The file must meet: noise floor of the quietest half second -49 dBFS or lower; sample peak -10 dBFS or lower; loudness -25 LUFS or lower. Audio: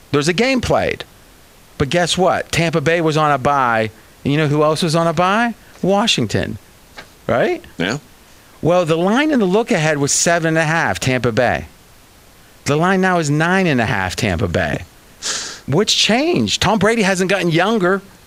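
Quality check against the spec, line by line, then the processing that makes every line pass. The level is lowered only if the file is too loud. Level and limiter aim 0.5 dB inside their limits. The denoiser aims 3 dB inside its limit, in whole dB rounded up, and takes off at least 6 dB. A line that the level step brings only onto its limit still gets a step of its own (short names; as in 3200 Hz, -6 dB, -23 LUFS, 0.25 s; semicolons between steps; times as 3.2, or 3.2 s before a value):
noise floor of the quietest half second -45 dBFS: fail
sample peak -3.0 dBFS: fail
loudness -16.0 LUFS: fail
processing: gain -9.5 dB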